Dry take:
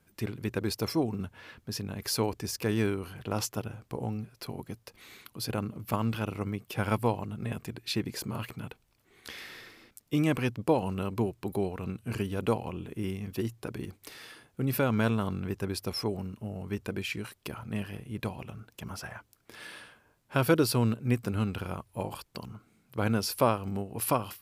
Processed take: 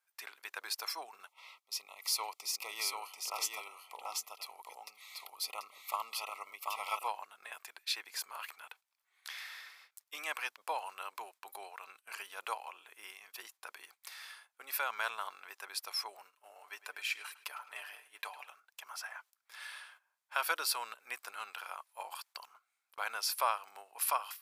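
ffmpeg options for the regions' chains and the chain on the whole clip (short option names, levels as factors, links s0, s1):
-filter_complex "[0:a]asettb=1/sr,asplit=3[s0][s1][s2];[s0]atrim=end=1.274[s3];[s1]atrim=start=1.27:end=7.08,asetpts=PTS-STARTPTS,afade=t=in:d=0.004:c=qsin,afade=t=out:st=5.806:d=0.004:c=qsin,asuperstop=centerf=1600:order=20:qfactor=2.9,aecho=1:1:737:0.708,atrim=end_sample=256221[s4];[s2]atrim=start=7.076[s5];[s3][s4]acrossfade=d=0.004:c1=hsin:c2=qsin[s6];[s6][s5]acrossfade=d=0.004:c1=qsin:c2=hsin,asettb=1/sr,asplit=3[s7][s8][s9];[s7]atrim=end=16.264[s10];[s8]atrim=start=16.26:end=18.48,asetpts=PTS-STARTPTS,afade=t=in:d=0.004:c=qsin,afade=t=out:st=2.216:d=0.004:c=qsin,lowshelf=f=120:g=-11,aecho=1:1:6.8:0.46,atrim=end_sample=97902,asplit=2[s11][s12];[s12]adelay=106,lowpass=f=4900:p=1,volume=0.158,asplit=2[s13][s14];[s14]adelay=106,lowpass=f=4900:p=1,volume=0.48,asplit=2[s15][s16];[s16]adelay=106,lowpass=f=4900:p=1,volume=0.48,asplit=2[s17][s18];[s18]adelay=106,lowpass=f=4900:p=1,volume=0.48[s19];[s11][s13][s15][s17][s19]amix=inputs=5:normalize=0,atrim=end_sample=97902[s20];[s9]atrim=start=18.476[s21];[s10][s20]acrossfade=d=0.004:c1=hsin:c2=qsin[s22];[s22][s21]acrossfade=d=0.004:c1=qsin:c2=hsin,highpass=f=850:w=0.5412,highpass=f=850:w=1.3066,bandreject=f=2900:w=22,agate=range=0.316:threshold=0.00126:ratio=16:detection=peak,volume=0.891"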